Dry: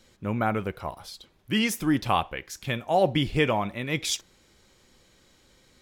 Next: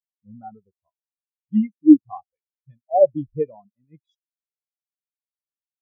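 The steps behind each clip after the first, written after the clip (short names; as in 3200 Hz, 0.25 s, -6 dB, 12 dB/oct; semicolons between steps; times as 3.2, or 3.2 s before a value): spectral expander 4:1; gain +8.5 dB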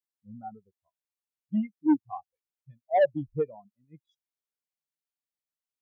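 dynamic EQ 260 Hz, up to -7 dB, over -27 dBFS, Q 1; soft clip -13.5 dBFS, distortion -12 dB; gain -2 dB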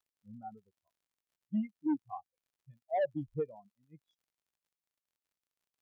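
crackle 65/s -62 dBFS; limiter -21 dBFS, peak gain reduction 5.5 dB; gain -5 dB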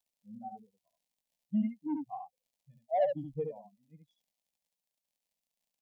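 fixed phaser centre 360 Hz, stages 6; on a send: echo 71 ms -5 dB; on the sum: gain +2.5 dB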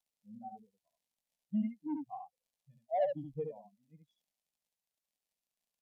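gain -3 dB; AAC 96 kbps 32000 Hz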